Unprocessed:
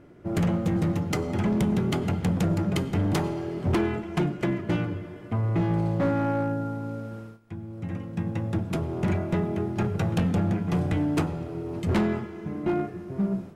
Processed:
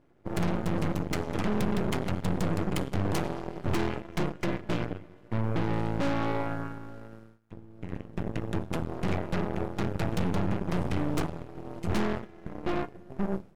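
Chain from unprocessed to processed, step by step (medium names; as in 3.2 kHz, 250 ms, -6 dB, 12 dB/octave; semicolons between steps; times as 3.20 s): Chebyshev shaper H 6 -27 dB, 7 -21 dB, 8 -25 dB, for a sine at -18 dBFS; half-wave rectifier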